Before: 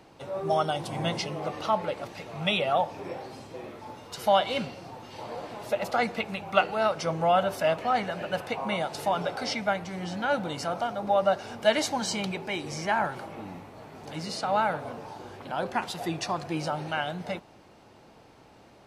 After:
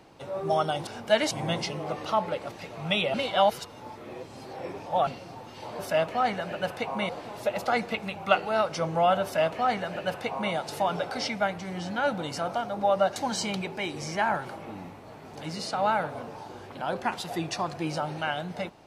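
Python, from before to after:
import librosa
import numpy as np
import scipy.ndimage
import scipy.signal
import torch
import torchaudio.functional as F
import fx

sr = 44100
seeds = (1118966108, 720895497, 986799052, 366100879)

y = fx.edit(x, sr, fx.reverse_span(start_s=2.7, length_s=1.93),
    fx.duplicate(start_s=7.49, length_s=1.3, to_s=5.35),
    fx.move(start_s=11.42, length_s=0.44, to_s=0.87), tone=tone)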